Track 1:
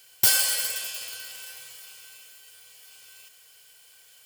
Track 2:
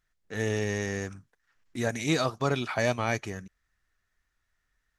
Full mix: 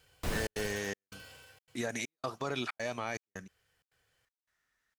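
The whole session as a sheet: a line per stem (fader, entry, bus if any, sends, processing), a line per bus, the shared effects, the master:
1.3 s -4 dB -> 1.76 s -14 dB, 0.00 s, no send, wavefolder -21.5 dBFS; tilt -4.5 dB/oct
0.0 dB, 0.00 s, no send, HPF 280 Hz 6 dB/oct; limiter -24 dBFS, peak gain reduction 10 dB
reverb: off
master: step gate "xxxxx.xxxx.." 161 bpm -60 dB

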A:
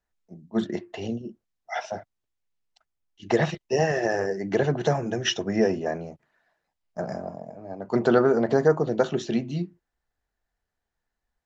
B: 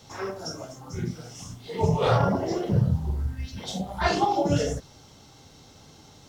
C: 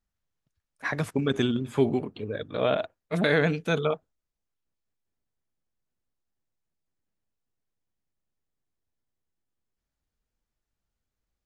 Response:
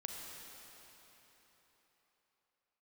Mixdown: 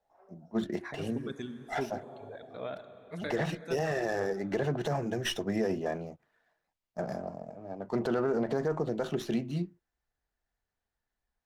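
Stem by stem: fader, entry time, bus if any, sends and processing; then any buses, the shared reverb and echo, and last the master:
-4.0 dB, 0.00 s, no send, running maximum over 3 samples
-14.5 dB, 0.00 s, no send, band-pass 680 Hz, Q 4.9; auto duck -7 dB, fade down 0.60 s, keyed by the first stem
-16.0 dB, 0.00 s, send -3 dB, reverb removal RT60 1.6 s; bell 2900 Hz -13 dB 0.28 oct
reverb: on, RT60 4.1 s, pre-delay 33 ms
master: limiter -21 dBFS, peak gain reduction 9.5 dB

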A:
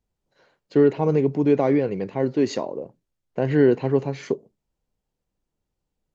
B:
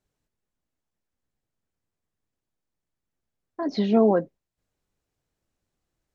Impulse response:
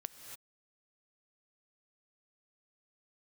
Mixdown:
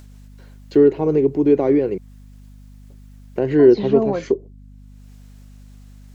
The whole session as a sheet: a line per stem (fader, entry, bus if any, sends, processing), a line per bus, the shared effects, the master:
-3.0 dB, 0.00 s, muted 1.98–2.9, no send, gate with hold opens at -52 dBFS; bell 360 Hz +11.5 dB 0.71 oct
-2.5 dB, 0.00 s, no send, upward compressor, threshold -44 dBFS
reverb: off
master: hum 50 Hz, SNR 23 dB; mismatched tape noise reduction encoder only

